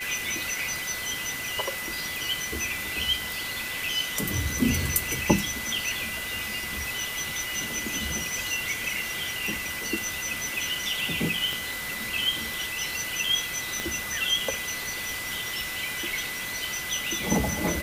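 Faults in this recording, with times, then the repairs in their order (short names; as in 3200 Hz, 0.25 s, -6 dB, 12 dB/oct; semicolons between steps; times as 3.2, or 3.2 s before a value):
tone 2000 Hz -34 dBFS
11.53 pop
13.8 pop -15 dBFS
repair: de-click; notch 2000 Hz, Q 30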